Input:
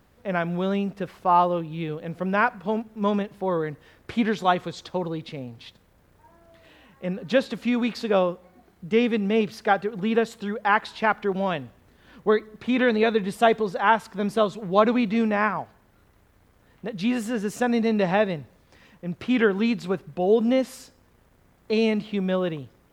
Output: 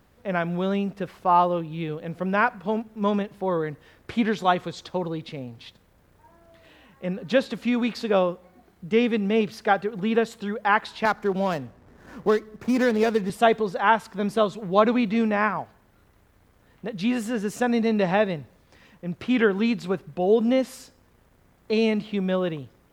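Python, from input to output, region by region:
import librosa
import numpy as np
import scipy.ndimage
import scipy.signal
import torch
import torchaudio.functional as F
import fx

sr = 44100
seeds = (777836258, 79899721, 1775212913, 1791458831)

y = fx.chain(x, sr, fx.median_filter(points=15),
    fx.band_squash(depth_pct=40), at=(11.05, 13.3))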